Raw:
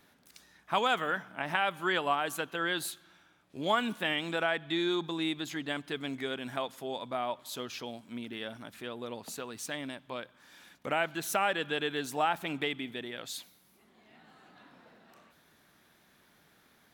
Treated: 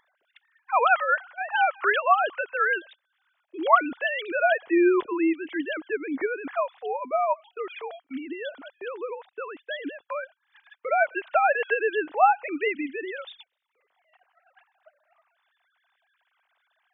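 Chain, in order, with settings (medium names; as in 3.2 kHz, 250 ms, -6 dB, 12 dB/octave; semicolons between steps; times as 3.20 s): formants replaced by sine waves; upward compressor, threshold -44 dBFS; gate -51 dBFS, range -22 dB; trim +8 dB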